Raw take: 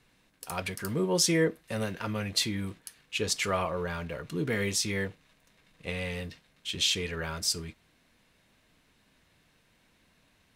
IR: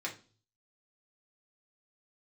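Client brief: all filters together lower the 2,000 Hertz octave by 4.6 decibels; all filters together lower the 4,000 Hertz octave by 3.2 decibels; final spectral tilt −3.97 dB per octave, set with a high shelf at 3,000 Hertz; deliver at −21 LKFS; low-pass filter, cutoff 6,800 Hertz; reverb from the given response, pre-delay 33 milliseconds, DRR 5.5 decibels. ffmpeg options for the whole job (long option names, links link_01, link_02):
-filter_complex "[0:a]lowpass=6800,equalizer=frequency=2000:width_type=o:gain=-5.5,highshelf=frequency=3000:gain=3,equalizer=frequency=4000:width_type=o:gain=-4.5,asplit=2[link_01][link_02];[1:a]atrim=start_sample=2205,adelay=33[link_03];[link_02][link_03]afir=irnorm=-1:irlink=0,volume=-8.5dB[link_04];[link_01][link_04]amix=inputs=2:normalize=0,volume=10.5dB"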